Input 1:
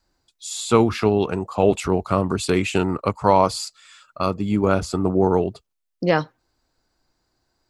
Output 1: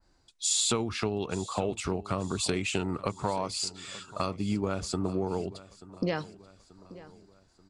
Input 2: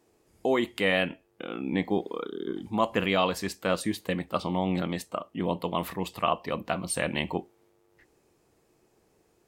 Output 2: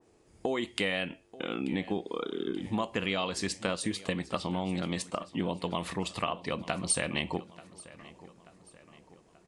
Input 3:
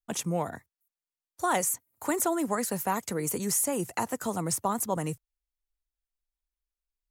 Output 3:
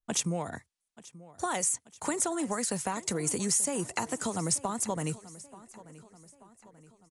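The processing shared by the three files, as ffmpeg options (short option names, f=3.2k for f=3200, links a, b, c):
-filter_complex "[0:a]aresample=22050,aresample=44100,acompressor=threshold=-31dB:ratio=5,lowshelf=f=220:g=3,asplit=2[a][b];[b]aecho=0:1:884|1768|2652|3536:0.119|0.0618|0.0321|0.0167[c];[a][c]amix=inputs=2:normalize=0,adynamicequalizer=threshold=0.00251:dfrequency=2200:dqfactor=0.7:tfrequency=2200:tqfactor=0.7:attack=5:release=100:ratio=0.375:range=3:mode=boostabove:tftype=highshelf,volume=1.5dB"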